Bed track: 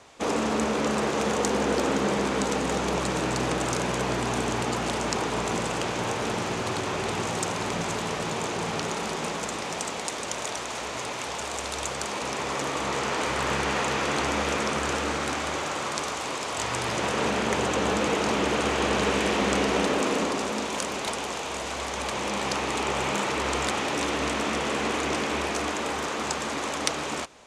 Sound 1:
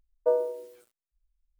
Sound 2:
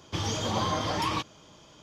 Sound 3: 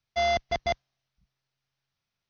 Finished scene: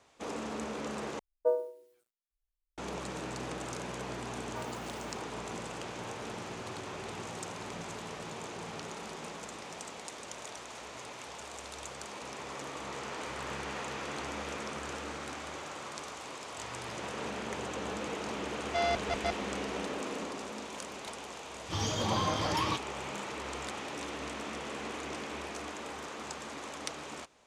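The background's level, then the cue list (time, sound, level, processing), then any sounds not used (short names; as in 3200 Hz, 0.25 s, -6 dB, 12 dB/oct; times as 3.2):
bed track -12.5 dB
1.19 replace with 1 -3.5 dB + upward expander, over -41 dBFS
4.29 add 1 + HPF 1100 Hz 24 dB/oct
18.58 add 3 -4 dB + core saturation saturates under 470 Hz
21.55 add 2 -2.5 dB + attack slew limiter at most 310 dB/s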